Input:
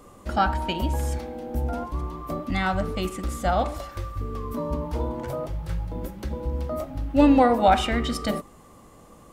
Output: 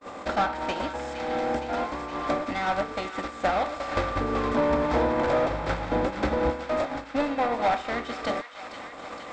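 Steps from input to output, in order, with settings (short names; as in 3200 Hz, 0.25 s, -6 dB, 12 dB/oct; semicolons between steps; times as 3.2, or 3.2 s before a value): per-bin compression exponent 0.6; compressor 16:1, threshold -27 dBFS, peak gain reduction 17 dB; 3.9–6.5 tilt -1.5 dB/oct; overdrive pedal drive 22 dB, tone 2700 Hz, clips at -15.5 dBFS; gate -23 dBFS, range -55 dB; elliptic low-pass 7800 Hz, stop band 40 dB; notch 2900 Hz, Q 9.1; thin delay 0.465 s, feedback 76%, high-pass 1400 Hz, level -9 dB; gain +5.5 dB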